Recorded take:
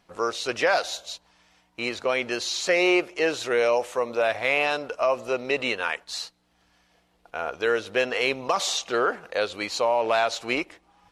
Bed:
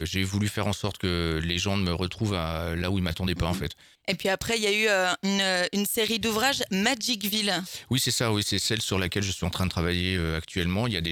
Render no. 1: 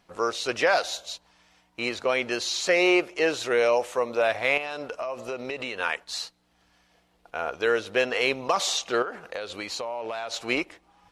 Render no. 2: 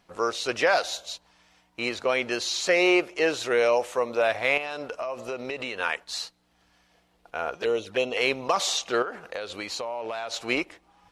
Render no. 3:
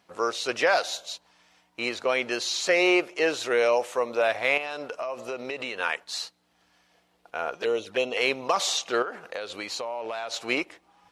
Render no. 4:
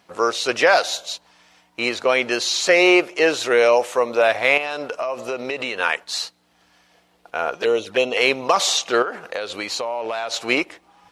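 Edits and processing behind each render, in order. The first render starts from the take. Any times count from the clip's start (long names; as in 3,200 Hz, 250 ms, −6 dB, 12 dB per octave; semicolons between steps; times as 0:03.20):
0:04.57–0:05.79: downward compressor, threshold −28 dBFS; 0:09.02–0:10.34: downward compressor, threshold −29 dBFS
0:07.55–0:08.17: flanger swept by the level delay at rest 6.6 ms, full sweep at −22 dBFS
high-pass filter 180 Hz 6 dB per octave
level +7 dB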